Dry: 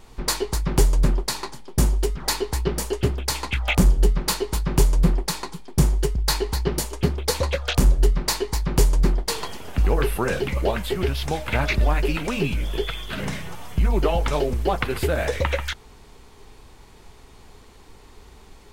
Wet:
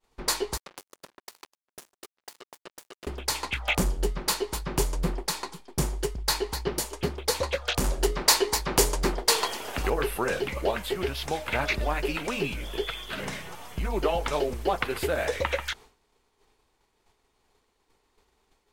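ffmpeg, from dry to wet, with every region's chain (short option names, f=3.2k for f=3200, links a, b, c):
-filter_complex "[0:a]asettb=1/sr,asplit=3[a][b][c];[a]atrim=end=0.574[d];[b]atrim=start=0.57:end=3.07,asetpts=PTS-STARTPTS,afade=t=in:d=0.004:c=qsin,afade=t=out:st=2.496:d=0.004:c=qsin,highpass=300,acompressor=threshold=-33dB:ratio=16:attack=3.2:release=140:knee=1:detection=peak,acrusher=bits=4:mix=0:aa=0.5[e];[c]atrim=start=3.066[f];[d][e]acrossfade=d=0.004:c1=hsin:c2=qsin[g];[g][f]acrossfade=d=0.004:c1=qsin:c2=hsin,asettb=1/sr,asplit=3[h][i][j];[h]atrim=end=7.844[k];[i]atrim=start=7.84:end=9.9,asetpts=PTS-STARTPTS,afade=t=in:d=0.004:c=qsin,afade=t=out:st=2.056:d=0.004:c=qsin,bass=f=250:g=-7,treble=f=4k:g=1,bandreject=f=60:t=h:w=6,bandreject=f=120:t=h:w=6,bandreject=f=180:t=h:w=6,bandreject=f=240:t=h:w=6,bandreject=f=300:t=h:w=6,bandreject=f=360:t=h:w=6,bandreject=f=420:t=h:w=6,bandreject=f=480:t=h:w=6,bandreject=f=540:t=h:w=6,acontrast=78[l];[j]atrim=start=9.896[m];[k][l]acrossfade=d=0.004:c1=hsin:c2=qsin[n];[n][m]acrossfade=d=0.004:c1=qsin:c2=hsin,bass=f=250:g=-9,treble=f=4k:g=0,agate=range=-33dB:threshold=-40dB:ratio=3:detection=peak,volume=-2.5dB"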